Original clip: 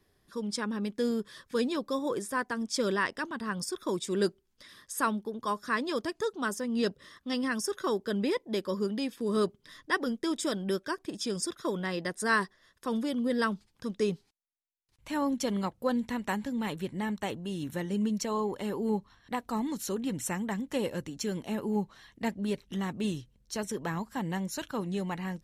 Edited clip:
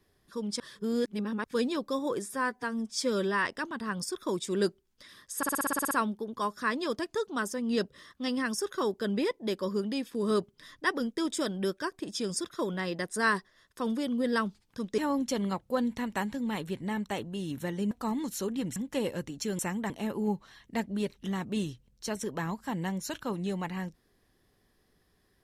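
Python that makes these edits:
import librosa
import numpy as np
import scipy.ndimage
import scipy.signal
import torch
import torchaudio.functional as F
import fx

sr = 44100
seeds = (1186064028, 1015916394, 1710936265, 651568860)

y = fx.edit(x, sr, fx.reverse_span(start_s=0.6, length_s=0.84),
    fx.stretch_span(start_s=2.26, length_s=0.8, factor=1.5),
    fx.stutter(start_s=4.97, slice_s=0.06, count=10),
    fx.cut(start_s=14.04, length_s=1.06),
    fx.cut(start_s=18.03, length_s=1.36),
    fx.move(start_s=20.24, length_s=0.31, to_s=21.38), tone=tone)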